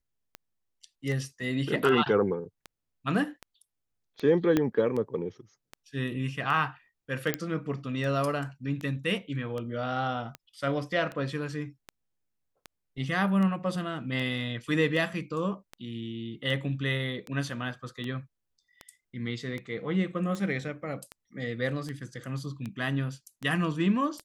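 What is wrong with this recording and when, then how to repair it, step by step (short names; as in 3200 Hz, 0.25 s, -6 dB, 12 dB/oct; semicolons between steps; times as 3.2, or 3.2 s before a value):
tick 78 rpm -23 dBFS
4.57 pop -12 dBFS
7.34 pop -10 dBFS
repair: de-click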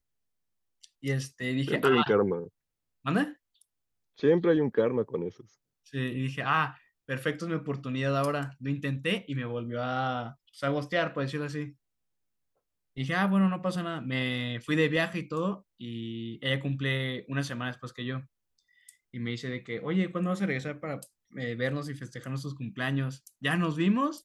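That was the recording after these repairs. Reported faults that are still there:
4.57 pop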